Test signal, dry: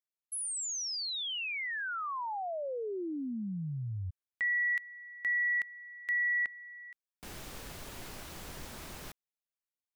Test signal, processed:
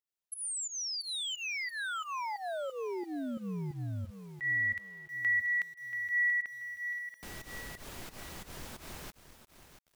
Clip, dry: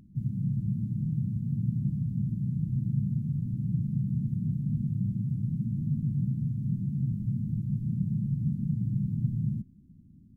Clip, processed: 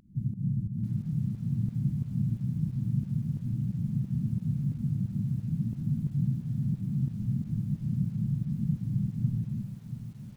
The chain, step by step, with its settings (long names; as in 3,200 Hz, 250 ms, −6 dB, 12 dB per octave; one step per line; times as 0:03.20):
fake sidechain pumping 89 BPM, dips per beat 2, −18 dB, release 143 ms
feedback echo at a low word length 683 ms, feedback 35%, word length 9 bits, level −10 dB